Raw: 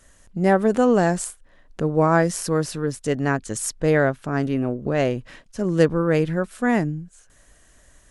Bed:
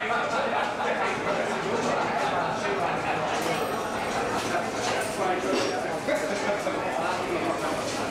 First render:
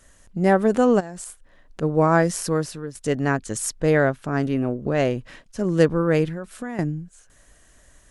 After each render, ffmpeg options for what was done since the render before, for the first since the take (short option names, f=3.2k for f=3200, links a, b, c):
-filter_complex "[0:a]asplit=3[a][b][c];[a]afade=t=out:st=0.99:d=0.02[d];[b]acompressor=threshold=-31dB:ratio=8:attack=3.2:release=140:knee=1:detection=peak,afade=t=in:st=0.99:d=0.02,afade=t=out:st=1.81:d=0.02[e];[c]afade=t=in:st=1.81:d=0.02[f];[d][e][f]amix=inputs=3:normalize=0,asettb=1/sr,asplit=3[g][h][i];[g]atrim=end=6.264[j];[h]atrim=start=6.26:end=6.79,asetpts=PTS-STARTPTS,afade=t=in:d=0.004:c=qsin,afade=t=out:st=0.526:d=0.004:c=qsin,acompressor=threshold=-26dB:ratio=10:attack=3.2:release=140:knee=1:detection=peak[k];[i]atrim=start=6.786[l];[j][k]acrossfade=d=0.004:c1=hsin:c2=qsin[m];[m][l]acrossfade=d=0.004:c1=qsin:c2=hsin,asplit=2[n][o];[n]atrim=end=2.95,asetpts=PTS-STARTPTS,afade=t=out:st=2.49:d=0.46:silence=0.237137[p];[o]atrim=start=2.95,asetpts=PTS-STARTPTS,afade=t=in:d=0.004:c=hsin:silence=0.237137[q];[p][q]concat=n=2:v=0:a=1"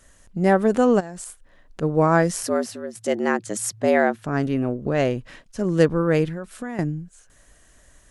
-filter_complex "[0:a]asettb=1/sr,asplit=3[a][b][c];[a]atrim=end=2.434[d];[b]atrim=start=2.43:end=4.26,asetpts=PTS-STARTPTS,afade=t=in:d=0.004:c=qsin,afade=t=out:st=1.826:d=0.004:c=qsin,afreqshift=94[e];[c]atrim=start=4.256[f];[d][e]acrossfade=d=0.004:c1=hsin:c2=qsin[g];[g][f]acrossfade=d=0.004:c1=qsin:c2=hsin"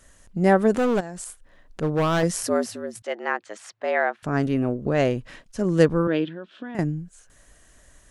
-filter_complex "[0:a]asettb=1/sr,asplit=3[a][b][c];[a]atrim=end=0.724[d];[b]atrim=start=0.72:end=2.23,asetpts=PTS-STARTPTS,afade=t=in:d=0.004:c=qsin,afade=t=out:st=1.506:d=0.004:c=qsin,asoftclip=type=hard:threshold=-18dB[e];[c]atrim=start=2.226[f];[d][e]acrossfade=d=0.004:c1=hsin:c2=qsin[g];[g][f]acrossfade=d=0.004:c1=qsin:c2=hsin,asettb=1/sr,asplit=3[h][i][j];[h]atrim=end=3.024[k];[i]atrim=start=3.02:end=4.23,asetpts=PTS-STARTPTS,afade=t=in:d=0.004:c=qsin,afade=t=out:st=1.206:d=0.004:c=qsin,highpass=690,lowpass=3k[l];[j]atrim=start=4.226[m];[k][l]acrossfade=d=0.004:c1=hsin:c2=qsin[n];[n][m]acrossfade=d=0.004:c1=qsin:c2=hsin,asettb=1/sr,asplit=3[o][p][q];[o]atrim=end=6.074[r];[p]atrim=start=6.07:end=6.75,asetpts=PTS-STARTPTS,afade=t=in:d=0.004:c=qsin,afade=t=out:st=0.676:d=0.004:c=qsin,highpass=280,equalizer=f=300:t=q:w=4:g=4,equalizer=f=480:t=q:w=4:g=-6,equalizer=f=800:t=q:w=4:g=-8,equalizer=f=1.2k:t=q:w=4:g=-7,equalizer=f=2.1k:t=q:w=4:g=-9,equalizer=f=3.3k:t=q:w=4:g=8,lowpass=f=3.6k:w=0.5412,lowpass=f=3.6k:w=1.3066[s];[q]atrim=start=6.746[t];[r][s]acrossfade=d=0.004:c1=hsin:c2=qsin[u];[u][t]acrossfade=d=0.004:c1=qsin:c2=hsin"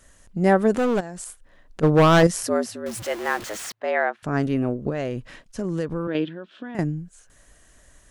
-filter_complex "[0:a]asettb=1/sr,asplit=3[a][b][c];[a]atrim=end=1.834[d];[b]atrim=start=1.83:end=2.27,asetpts=PTS-STARTPTS,afade=t=in:d=0.004:c=qsin,afade=t=out:st=0.436:d=0.004:c=qsin,acontrast=89[e];[c]atrim=start=2.266[f];[d][e]acrossfade=d=0.004:c1=hsin:c2=qsin[g];[g][f]acrossfade=d=0.004:c1=qsin:c2=hsin,asettb=1/sr,asplit=3[h][i][j];[h]atrim=end=2.864[k];[i]atrim=start=2.86:end=3.72,asetpts=PTS-STARTPTS,afade=t=in:d=0.004:c=qsin,afade=t=out:st=0.856:d=0.004:c=qsin,aeval=exprs='val(0)+0.5*0.0299*sgn(val(0))':c=same[l];[j]atrim=start=3.716[m];[k][l]acrossfade=d=0.004:c1=hsin:c2=qsin[n];[n][m]acrossfade=d=0.004:c1=qsin:c2=hsin,asettb=1/sr,asplit=3[o][p][q];[o]atrim=end=4.894[r];[p]atrim=start=4.89:end=6.15,asetpts=PTS-STARTPTS,afade=t=in:d=0.004:c=qsin,afade=t=out:st=1.256:d=0.004:c=qsin,acompressor=threshold=-22dB:ratio=6:attack=3.2:release=140:knee=1:detection=peak[s];[q]atrim=start=6.146[t];[r][s]acrossfade=d=0.004:c1=hsin:c2=qsin[u];[u][t]acrossfade=d=0.004:c1=qsin:c2=hsin"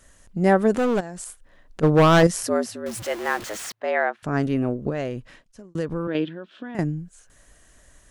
-filter_complex "[0:a]asplit=2[a][b];[a]atrim=end=5.75,asetpts=PTS-STARTPTS,afade=t=out:st=5:d=0.75[c];[b]atrim=start=5.75,asetpts=PTS-STARTPTS,afade=t=in:d=0.004:c=hsin[d];[c][d]concat=n=2:v=0:a=1"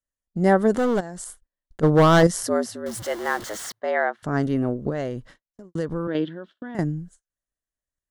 -af "agate=range=-39dB:threshold=-44dB:ratio=16:detection=peak,equalizer=f=2.5k:w=7.4:g=-14"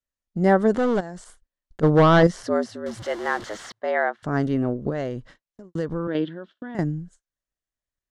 -filter_complex "[0:a]lowpass=7.2k,acrossover=split=4500[a][b];[b]acompressor=threshold=-47dB:ratio=4:attack=1:release=60[c];[a][c]amix=inputs=2:normalize=0"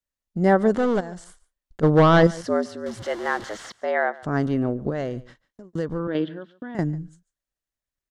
-af "aecho=1:1:144:0.0891"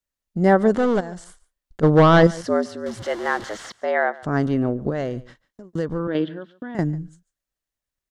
-af "volume=2dB"